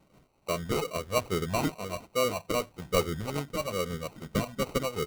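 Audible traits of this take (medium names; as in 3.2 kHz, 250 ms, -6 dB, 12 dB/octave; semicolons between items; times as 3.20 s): a quantiser's noise floor 12-bit, dither triangular; phasing stages 8, 2.4 Hz, lowest notch 360–1500 Hz; aliases and images of a low sample rate 1.7 kHz, jitter 0%; random flutter of the level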